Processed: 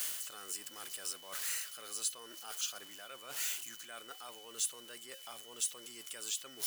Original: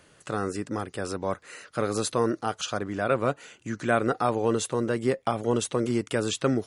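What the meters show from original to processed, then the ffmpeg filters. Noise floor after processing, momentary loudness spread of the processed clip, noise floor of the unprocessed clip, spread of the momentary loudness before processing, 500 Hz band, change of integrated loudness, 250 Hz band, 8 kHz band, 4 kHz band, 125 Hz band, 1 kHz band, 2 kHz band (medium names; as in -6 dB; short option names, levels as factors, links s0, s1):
-53 dBFS, 11 LU, -60 dBFS, 8 LU, -28.5 dB, -11.5 dB, -32.5 dB, 0.0 dB, -4.0 dB, under -35 dB, -22.0 dB, -13.5 dB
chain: -af "aeval=exprs='val(0)+0.5*0.0158*sgn(val(0))':c=same,areverse,acompressor=threshold=0.0141:ratio=6,areverse,aderivative,aeval=exprs='val(0)+0.000794*sin(2*PI*3000*n/s)':c=same,volume=2.51"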